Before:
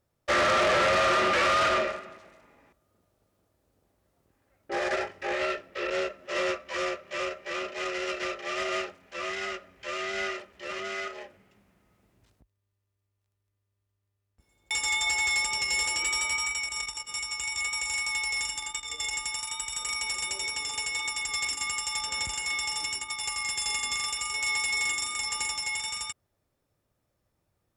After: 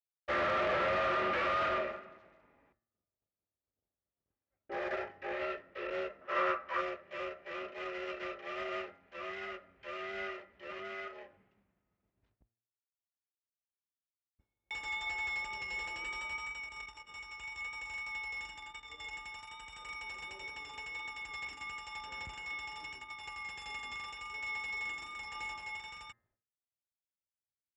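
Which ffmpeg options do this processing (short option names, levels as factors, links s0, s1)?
-filter_complex "[0:a]asettb=1/sr,asplit=3[s0][s1][s2];[s0]atrim=end=6.214[s3];[s1]atrim=start=6.21:end=6.81,asetpts=PTS-STARTPTS,afade=t=in:d=0.004:c=qsin,afade=t=out:st=0.596:d=0.004:c=qsin,equalizer=f=1200:w=1.3:g=12.5[s4];[s2]atrim=start=6.806[s5];[s3][s4]acrossfade=d=0.004:c1=hsin:c2=qsin[s6];[s6][s5]acrossfade=d=0.004:c1=qsin:c2=hsin,asettb=1/sr,asplit=3[s7][s8][s9];[s7]atrim=end=25.334[s10];[s8]atrim=start=25.33:end=25.77,asetpts=PTS-STARTPTS,afade=t=in:d=0.004:c=qsin,afade=t=out:st=0.436:d=0.004:c=qsin,asplit=2[s11][s12];[s12]adelay=21,volume=0.531[s13];[s11][s13]amix=inputs=2:normalize=0,atrim=end_sample=19404[s14];[s9]atrim=start=25.766[s15];[s10][s14]acrossfade=d=0.004:c1=hsin:c2=qsin[s16];[s16][s15]acrossfade=d=0.004:c1=qsin:c2=hsin,agate=range=0.0224:threshold=0.00112:ratio=3:detection=peak,lowpass=2600,bandreject=f=115.8:t=h:w=4,bandreject=f=231.6:t=h:w=4,bandreject=f=347.4:t=h:w=4,bandreject=f=463.2:t=h:w=4,bandreject=f=579:t=h:w=4,bandreject=f=694.8:t=h:w=4,bandreject=f=810.6:t=h:w=4,bandreject=f=926.4:t=h:w=4,bandreject=f=1042.2:t=h:w=4,bandreject=f=1158:t=h:w=4,bandreject=f=1273.8:t=h:w=4,bandreject=f=1389.6:t=h:w=4,bandreject=f=1505.4:t=h:w=4,bandreject=f=1621.2:t=h:w=4,bandreject=f=1737:t=h:w=4,bandreject=f=1852.8:t=h:w=4,bandreject=f=1968.6:t=h:w=4,bandreject=f=2084.4:t=h:w=4,volume=0.422"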